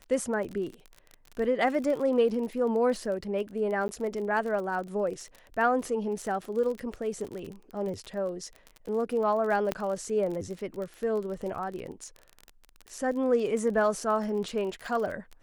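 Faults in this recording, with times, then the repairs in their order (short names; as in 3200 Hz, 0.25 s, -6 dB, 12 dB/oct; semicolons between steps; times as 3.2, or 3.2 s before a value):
crackle 34/s -34 dBFS
3.88–3.89 gap 10 ms
9.72 pop -14 dBFS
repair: de-click; interpolate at 3.88, 10 ms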